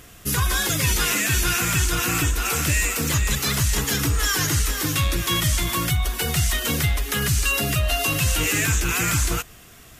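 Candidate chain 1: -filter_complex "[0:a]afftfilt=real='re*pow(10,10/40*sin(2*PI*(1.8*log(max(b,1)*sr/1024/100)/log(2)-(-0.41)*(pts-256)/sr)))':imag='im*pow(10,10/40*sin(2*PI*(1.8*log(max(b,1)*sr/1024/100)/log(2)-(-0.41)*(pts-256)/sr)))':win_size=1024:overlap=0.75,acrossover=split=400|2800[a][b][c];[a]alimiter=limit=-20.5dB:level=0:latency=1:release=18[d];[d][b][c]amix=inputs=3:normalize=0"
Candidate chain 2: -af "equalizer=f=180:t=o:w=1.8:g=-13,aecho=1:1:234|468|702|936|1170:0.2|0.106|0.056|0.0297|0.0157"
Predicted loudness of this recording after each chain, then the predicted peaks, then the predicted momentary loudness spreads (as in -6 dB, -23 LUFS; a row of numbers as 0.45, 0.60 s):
-20.5, -22.0 LUFS; -7.5, -10.0 dBFS; 4, 4 LU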